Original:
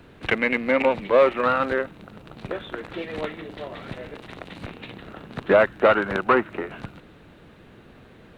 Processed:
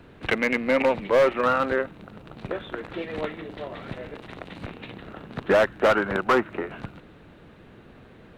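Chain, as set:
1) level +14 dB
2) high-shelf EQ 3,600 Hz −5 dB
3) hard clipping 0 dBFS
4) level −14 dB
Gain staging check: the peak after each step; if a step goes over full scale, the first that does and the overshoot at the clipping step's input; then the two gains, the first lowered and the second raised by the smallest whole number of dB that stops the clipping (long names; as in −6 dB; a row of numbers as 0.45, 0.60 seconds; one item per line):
+7.5, +7.0, 0.0, −14.0 dBFS
step 1, 7.0 dB
step 1 +7 dB, step 4 −7 dB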